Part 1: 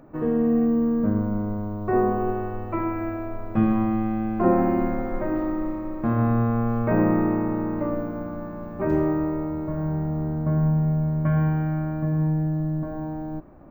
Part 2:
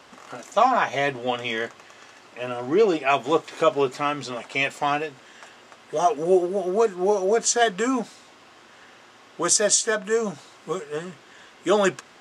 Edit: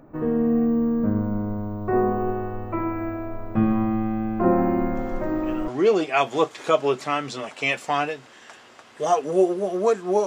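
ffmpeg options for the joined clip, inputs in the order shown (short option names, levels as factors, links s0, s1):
-filter_complex "[1:a]asplit=2[s0][s1];[0:a]apad=whole_dur=10.26,atrim=end=10.26,atrim=end=5.682[s2];[s1]atrim=start=2.608:end=7.19[s3];[s0]atrim=start=1.88:end=2.61,asetpts=PTS-STARTPTS,volume=0.376,afade=t=in:d=0.004:c=hsin,afade=t=out:st=0.726:d=0.004:c=hsin,adelay=4950[s4];[s2][s3]acrossfade=d=0.004:c1=hsin:c2=hsin[s5];[s5][s4]amix=inputs=2:normalize=0"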